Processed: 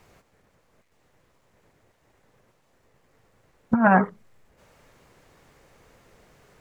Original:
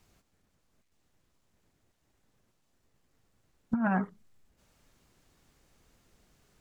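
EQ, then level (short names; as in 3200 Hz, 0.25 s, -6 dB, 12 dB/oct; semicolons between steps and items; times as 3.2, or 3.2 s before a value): graphic EQ 125/500/1000/2000 Hz +5/+10/+6/+7 dB; +5.0 dB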